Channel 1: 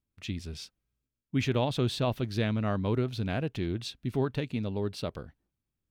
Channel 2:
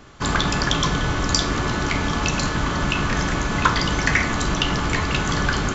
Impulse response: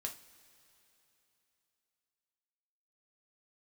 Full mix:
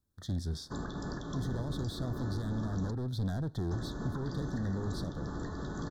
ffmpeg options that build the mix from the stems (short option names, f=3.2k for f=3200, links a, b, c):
-filter_complex "[0:a]alimiter=limit=-22dB:level=0:latency=1,asoftclip=type=hard:threshold=-33.5dB,volume=2.5dB,asplit=2[a][b];[b]volume=-10dB[c];[1:a]equalizer=f=410:t=o:w=2.3:g=9,alimiter=limit=-8dB:level=0:latency=1:release=230,adelay=500,volume=-16dB,asplit=3[d][e][f];[d]atrim=end=2.91,asetpts=PTS-STARTPTS,afade=t=out:st=2.906:d=0.004:c=hsin[g];[e]atrim=start=2.91:end=3.71,asetpts=PTS-STARTPTS,volume=0[h];[f]atrim=start=3.71,asetpts=PTS-STARTPTS,afade=t=in:d=0.004:c=hsin[i];[g][h][i]concat=n=3:v=0:a=1[j];[2:a]atrim=start_sample=2205[k];[c][k]afir=irnorm=-1:irlink=0[l];[a][j][l]amix=inputs=3:normalize=0,acrossover=split=300[m][n];[n]acompressor=threshold=-46dB:ratio=2.5[o];[m][o]amix=inputs=2:normalize=0,asuperstop=centerf=2500:order=12:qfactor=1.6,alimiter=level_in=1.5dB:limit=-24dB:level=0:latency=1:release=302,volume=-1.5dB"